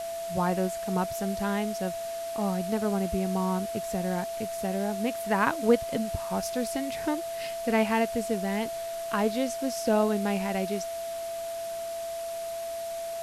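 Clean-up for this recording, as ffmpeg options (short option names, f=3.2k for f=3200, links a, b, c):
-af "bandreject=f=670:w=30,afwtdn=0.0063"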